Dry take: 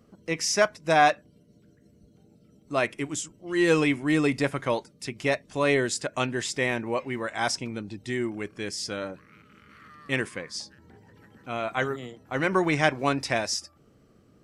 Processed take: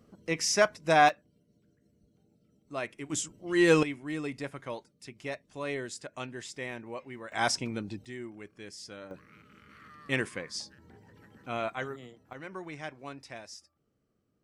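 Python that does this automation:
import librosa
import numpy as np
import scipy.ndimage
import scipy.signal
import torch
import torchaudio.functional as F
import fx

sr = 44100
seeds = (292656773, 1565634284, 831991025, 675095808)

y = fx.gain(x, sr, db=fx.steps((0.0, -2.0), (1.09, -10.0), (3.1, -0.5), (3.83, -12.0), (7.32, -1.0), (8.05, -12.5), (9.11, -2.5), (11.7, -9.0), (12.33, -18.0)))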